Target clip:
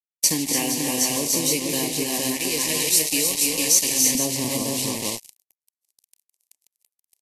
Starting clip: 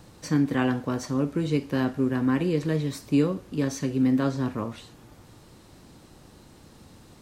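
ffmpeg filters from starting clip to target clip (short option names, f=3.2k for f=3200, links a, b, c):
-af "asetnsamples=n=441:p=0,asendcmd='2.03 highpass f 1300;4.15 highpass f 200',highpass=f=420:p=1,aecho=1:1:154|248|293|328|465:0.178|0.224|0.562|0.251|0.596,acrusher=bits=5:mix=0:aa=0.5,acompressor=threshold=-29dB:ratio=6,crystalizer=i=8:c=0,acontrast=32,asuperstop=centerf=1400:order=4:qfactor=1.3,equalizer=f=3.5k:t=o:w=0.37:g=-6" -ar 32000 -c:a libvorbis -b:a 48k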